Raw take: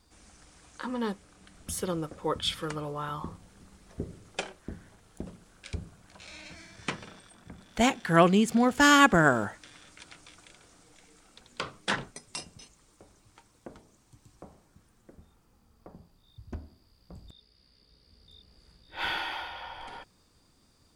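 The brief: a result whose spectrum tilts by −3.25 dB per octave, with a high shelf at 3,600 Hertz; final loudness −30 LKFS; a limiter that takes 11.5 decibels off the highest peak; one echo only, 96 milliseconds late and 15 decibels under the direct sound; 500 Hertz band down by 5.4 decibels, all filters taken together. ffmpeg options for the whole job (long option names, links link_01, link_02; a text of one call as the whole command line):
ffmpeg -i in.wav -af "equalizer=frequency=500:width_type=o:gain=-7.5,highshelf=frequency=3600:gain=8,alimiter=limit=-17dB:level=0:latency=1,aecho=1:1:96:0.178,volume=2dB" out.wav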